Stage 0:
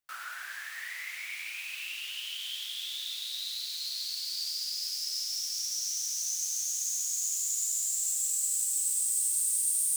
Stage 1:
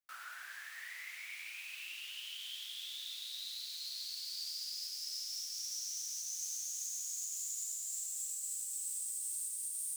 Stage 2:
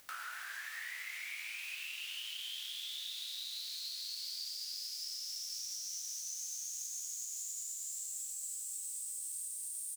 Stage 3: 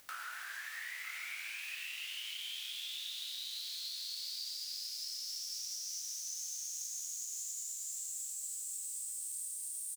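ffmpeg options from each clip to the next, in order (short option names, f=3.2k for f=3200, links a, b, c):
-af "alimiter=limit=-22.5dB:level=0:latency=1:release=271,volume=-7.5dB"
-filter_complex "[0:a]acompressor=threshold=-43dB:ratio=6,asplit=2[a][b];[b]adelay=25,volume=-4.5dB[c];[a][c]amix=inputs=2:normalize=0,acompressor=mode=upward:threshold=-43dB:ratio=2.5,volume=2.5dB"
-af "aecho=1:1:957:0.282"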